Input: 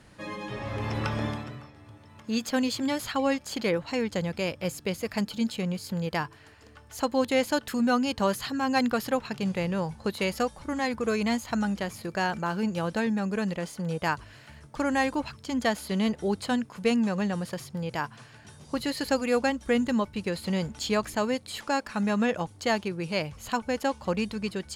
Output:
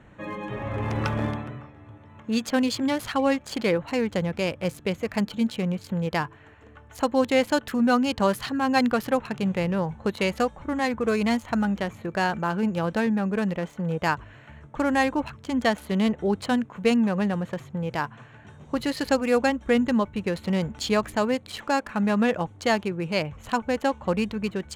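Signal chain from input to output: local Wiener filter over 9 samples; trim +3.5 dB

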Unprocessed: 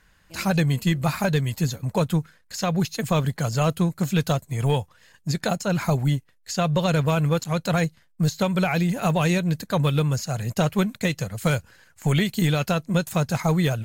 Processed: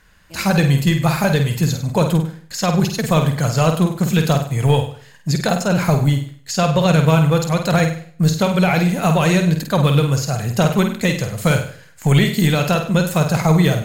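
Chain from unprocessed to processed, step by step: flutter echo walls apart 8.6 m, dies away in 0.46 s; modulated delay 91 ms, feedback 37%, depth 122 cents, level -22.5 dB; trim +5.5 dB

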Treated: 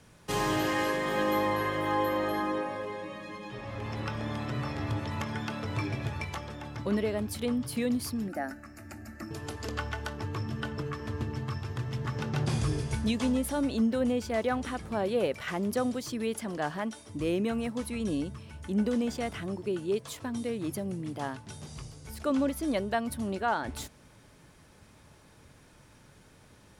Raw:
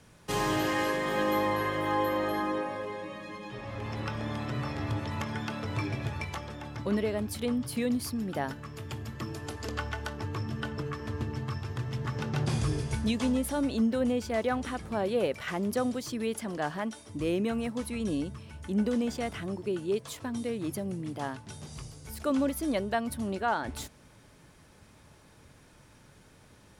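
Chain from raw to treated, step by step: 8.28–9.31 s: static phaser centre 670 Hz, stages 8; 21.72–22.67 s: treble shelf 11 kHz -7 dB

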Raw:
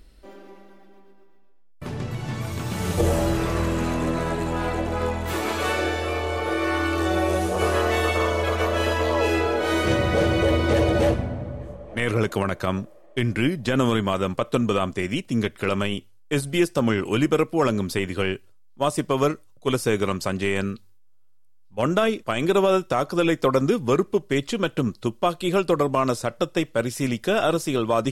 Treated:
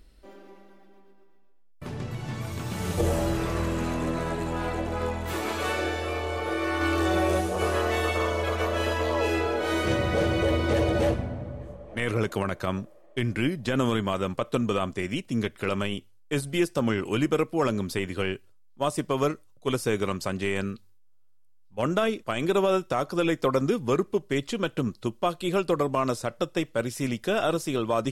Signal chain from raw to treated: 6.81–7.41 s: waveshaping leveller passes 1; trim -4 dB

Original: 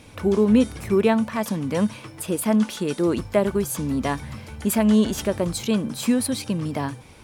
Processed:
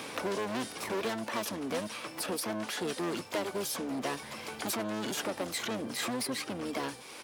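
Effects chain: vibrato 14 Hz 6.8 cents; hard clipper -23 dBFS, distortion -6 dB; harmony voices -12 st -2 dB, +7 st -15 dB; high-pass 350 Hz 12 dB/octave; three bands compressed up and down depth 70%; trim -5.5 dB

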